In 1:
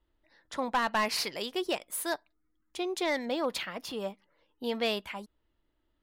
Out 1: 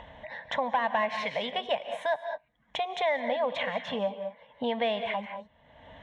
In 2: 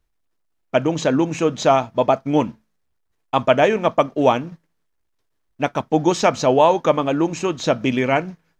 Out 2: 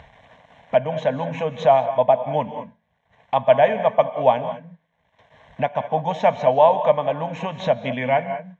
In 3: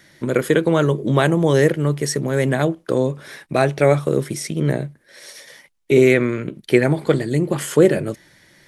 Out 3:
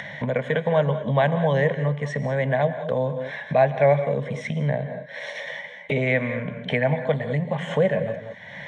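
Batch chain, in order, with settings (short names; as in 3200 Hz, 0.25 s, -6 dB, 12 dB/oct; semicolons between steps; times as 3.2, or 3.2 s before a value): speaker cabinet 130–4200 Hz, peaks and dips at 330 Hz -9 dB, 630 Hz +3 dB, 1200 Hz +3 dB, 2600 Hz -9 dB; fixed phaser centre 1300 Hz, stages 6; non-linear reverb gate 0.23 s rising, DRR 10.5 dB; upward compressor, threshold -20 dBFS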